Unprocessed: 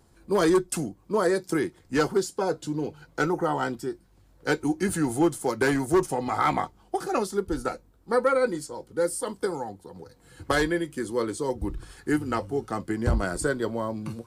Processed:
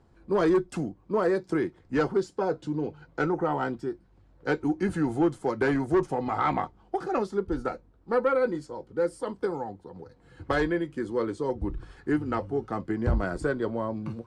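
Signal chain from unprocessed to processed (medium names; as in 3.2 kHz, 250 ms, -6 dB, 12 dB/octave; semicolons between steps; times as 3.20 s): treble shelf 3.4 kHz -10.5 dB; saturation -13.5 dBFS, distortion -23 dB; distance through air 71 m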